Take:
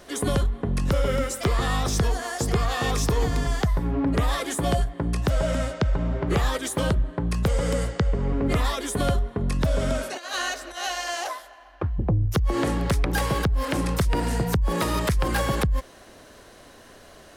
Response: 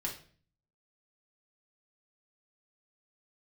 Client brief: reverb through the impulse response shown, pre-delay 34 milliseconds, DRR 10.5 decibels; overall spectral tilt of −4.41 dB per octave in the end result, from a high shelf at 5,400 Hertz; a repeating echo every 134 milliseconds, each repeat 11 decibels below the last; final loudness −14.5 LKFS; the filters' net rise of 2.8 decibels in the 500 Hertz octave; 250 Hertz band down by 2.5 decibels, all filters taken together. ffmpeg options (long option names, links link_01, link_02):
-filter_complex "[0:a]equalizer=frequency=250:width_type=o:gain=-5,equalizer=frequency=500:width_type=o:gain=4.5,highshelf=frequency=5400:gain=8,aecho=1:1:134|268|402:0.282|0.0789|0.0221,asplit=2[link_01][link_02];[1:a]atrim=start_sample=2205,adelay=34[link_03];[link_02][link_03]afir=irnorm=-1:irlink=0,volume=-12.5dB[link_04];[link_01][link_04]amix=inputs=2:normalize=0,volume=9dB"